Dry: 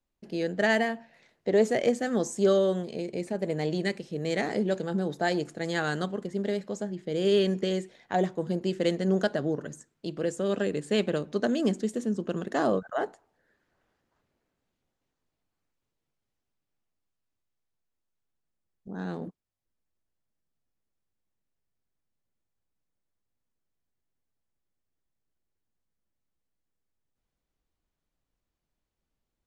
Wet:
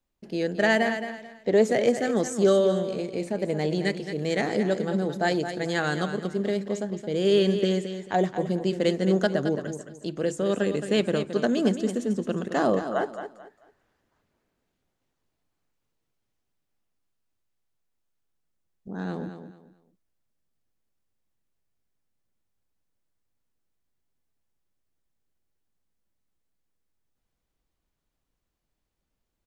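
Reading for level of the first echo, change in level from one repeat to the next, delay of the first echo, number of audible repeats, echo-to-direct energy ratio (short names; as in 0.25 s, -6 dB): -9.5 dB, -11.5 dB, 0.219 s, 3, -9.0 dB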